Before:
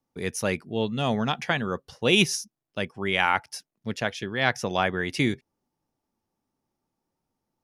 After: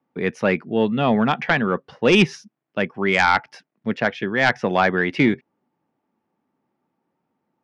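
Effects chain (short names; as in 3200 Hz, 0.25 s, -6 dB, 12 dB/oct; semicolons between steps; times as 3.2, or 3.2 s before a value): Chebyshev band-pass 180–2100 Hz, order 2; sine folder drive 5 dB, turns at -7 dBFS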